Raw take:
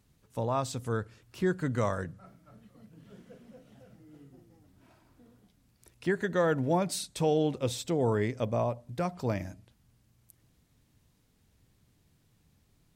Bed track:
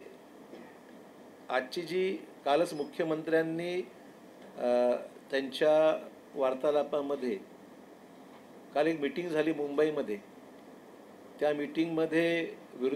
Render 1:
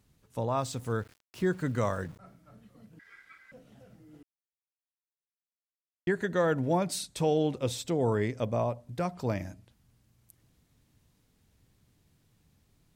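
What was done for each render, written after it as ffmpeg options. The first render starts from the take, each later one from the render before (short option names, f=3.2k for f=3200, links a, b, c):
-filter_complex "[0:a]asettb=1/sr,asplit=3[a][b][c];[a]atrim=end=0.574[d];[b]atrim=start=0.57:end=2.19,asetpts=PTS-STARTPTS,afade=t=in:d=0.004:c=qsin,afade=t=out:st=1.616:d=0.004:c=qsin,aeval=exprs='val(0)*gte(abs(val(0)),0.00316)':c=same[e];[c]atrim=start=2.186[f];[d][e]acrossfade=d=0.004:c1=hsin:c2=qsin[g];[g][f]acrossfade=d=0.004:c1=qsin:c2=hsin,asettb=1/sr,asplit=3[h][i][j];[h]atrim=end=2.994[k];[i]atrim=start=2.99:end=3.52,asetpts=PTS-STARTPTS,afade=t=in:d=0.004:c=qsin,afade=t=out:st=0.526:d=0.004:c=qsin,aeval=exprs='val(0)*sin(2*PI*1800*n/s)':c=same[l];[j]atrim=start=3.516[m];[k][l]acrossfade=d=0.004:c1=hsin:c2=qsin[n];[n][m]acrossfade=d=0.004:c1=qsin:c2=hsin,asplit=3[o][p][q];[o]atrim=end=4.23,asetpts=PTS-STARTPTS,afade=t=out:st=4.226:d=0.004:c=hsin[r];[p]atrim=start=4.23:end=6.07,asetpts=PTS-STARTPTS,volume=0[s];[q]atrim=start=6.07,asetpts=PTS-STARTPTS,afade=t=in:d=0.004:c=hsin[t];[r][s][t]concat=n=3:v=0:a=1"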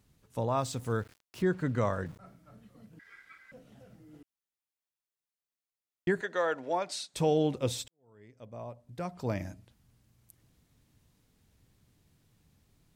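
-filter_complex "[0:a]asettb=1/sr,asplit=3[a][b][c];[a]atrim=end=1.424[d];[b]atrim=start=1.42:end=2.06,asetpts=PTS-STARTPTS,afade=t=in:d=0.004:c=qsin,afade=t=out:st=0.636:d=0.004:c=qsin,lowpass=f=3.5k:p=1[e];[c]atrim=start=2.056[f];[d][e]acrossfade=d=0.004:c1=hsin:c2=qsin[g];[g][f]acrossfade=d=0.004:c1=qsin:c2=hsin,asettb=1/sr,asplit=3[h][i][j];[h]atrim=end=6.214[k];[i]atrim=start=6.21:end=7.14,asetpts=PTS-STARTPTS,afade=t=in:d=0.004:c=qsin,afade=t=out:st=0.926:d=0.004:c=qsin,highpass=540,lowpass=6.4k[l];[j]atrim=start=7.136[m];[k][l]acrossfade=d=0.004:c1=hsin:c2=qsin[n];[n][m]acrossfade=d=0.004:c1=qsin:c2=hsin,asplit=2[o][p];[o]atrim=end=7.88,asetpts=PTS-STARTPTS,afade=t=out:st=7.876:d=0.004:c=hsin[q];[p]atrim=start=7.88,asetpts=PTS-STARTPTS,afade=t=in:d=1.58:c=qua[r];[q][r]concat=n=2:v=0:a=1"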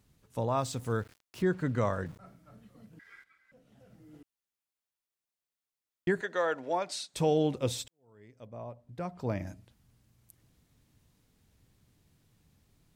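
-filter_complex "[0:a]asettb=1/sr,asplit=3[a][b][c];[a]atrim=end=8.474[d];[b]atrim=start=8.47:end=9.47,asetpts=PTS-STARTPTS,afade=t=in:d=0.004:c=qsin,afade=t=out:st=0.996:d=0.004:c=qsin,highshelf=f=3.5k:g=-8[e];[c]atrim=start=9.466[f];[d][e]acrossfade=d=0.004:c1=hsin:c2=qsin[g];[g][f]acrossfade=d=0.004:c1=qsin:c2=hsin,asplit=2[h][i];[h]atrim=end=3.24,asetpts=PTS-STARTPTS,afade=t=out:st=3.236:d=0.004:c=hsin:silence=0.237137[j];[i]atrim=start=3.24,asetpts=PTS-STARTPTS,afade=t=in:d=0.82:c=qua:silence=0.237137[k];[j][k]concat=n=2:v=0:a=1"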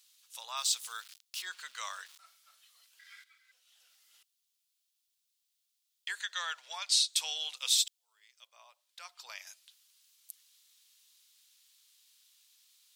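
-af "highpass=f=1.2k:w=0.5412,highpass=f=1.2k:w=1.3066,highshelf=f=2.5k:t=q:w=1.5:g=10.5"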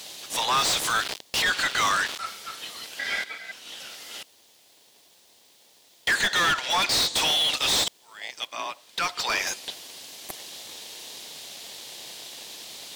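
-filter_complex "[0:a]asplit=2[a][b];[b]acrusher=samples=32:mix=1:aa=0.000001,volume=-10dB[c];[a][c]amix=inputs=2:normalize=0,asplit=2[d][e];[e]highpass=f=720:p=1,volume=36dB,asoftclip=type=tanh:threshold=-13dB[f];[d][f]amix=inputs=2:normalize=0,lowpass=f=3.5k:p=1,volume=-6dB"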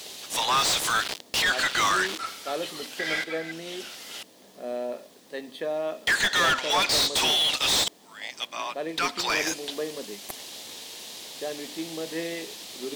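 -filter_complex "[1:a]volume=-4.5dB[a];[0:a][a]amix=inputs=2:normalize=0"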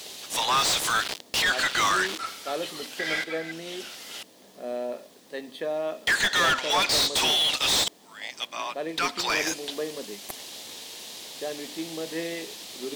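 -af anull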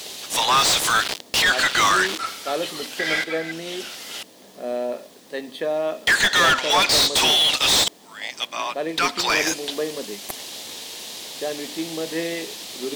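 -af "volume=5.5dB"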